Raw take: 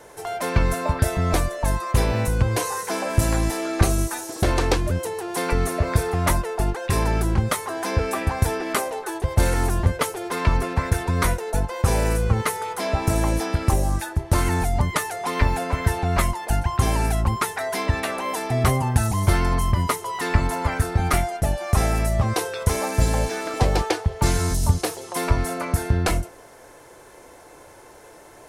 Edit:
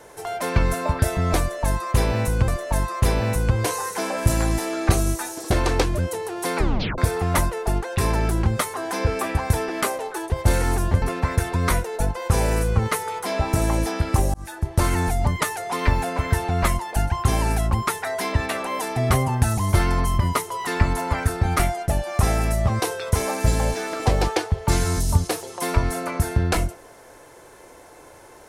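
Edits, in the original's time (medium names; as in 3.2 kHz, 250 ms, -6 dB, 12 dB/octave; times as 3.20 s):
1.40–2.48 s: loop, 2 plays
5.49 s: tape stop 0.41 s
9.94–10.56 s: delete
13.88–14.34 s: fade in equal-power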